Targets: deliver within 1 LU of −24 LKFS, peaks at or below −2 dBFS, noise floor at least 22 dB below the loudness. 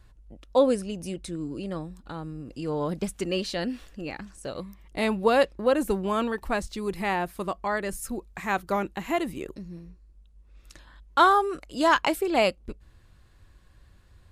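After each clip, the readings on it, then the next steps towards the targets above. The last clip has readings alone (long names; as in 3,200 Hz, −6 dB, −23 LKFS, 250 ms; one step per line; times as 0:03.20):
integrated loudness −27.0 LKFS; sample peak −7.0 dBFS; target loudness −24.0 LKFS
→ level +3 dB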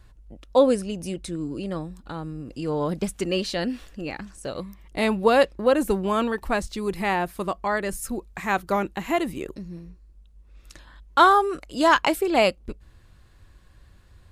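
integrated loudness −24.0 LKFS; sample peak −4.0 dBFS; background noise floor −54 dBFS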